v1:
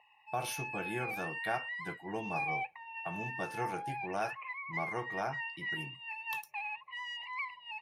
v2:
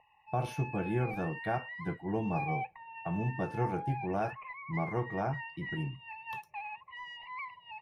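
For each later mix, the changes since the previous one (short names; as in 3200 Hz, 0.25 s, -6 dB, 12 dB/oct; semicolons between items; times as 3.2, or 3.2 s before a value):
master: add tilt -4 dB/oct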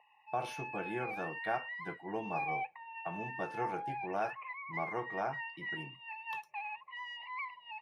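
master: add weighting filter A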